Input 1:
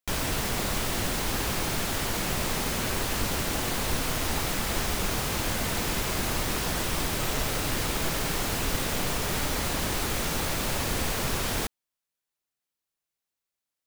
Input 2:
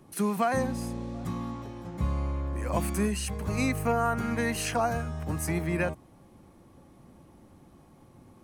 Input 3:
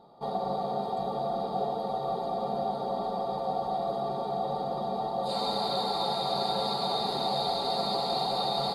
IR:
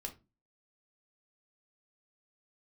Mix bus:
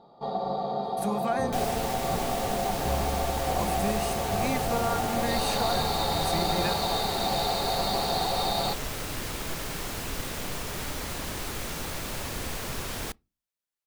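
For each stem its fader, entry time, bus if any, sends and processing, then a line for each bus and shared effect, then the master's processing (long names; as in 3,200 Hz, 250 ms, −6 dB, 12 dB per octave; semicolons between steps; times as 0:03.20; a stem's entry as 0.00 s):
−6.0 dB, 1.45 s, send −19.5 dB, no processing
−3.5 dB, 0.85 s, no send, no processing
+1.0 dB, 0.00 s, no send, low-pass filter 6,800 Hz 24 dB per octave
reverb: on, pre-delay 3 ms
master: no processing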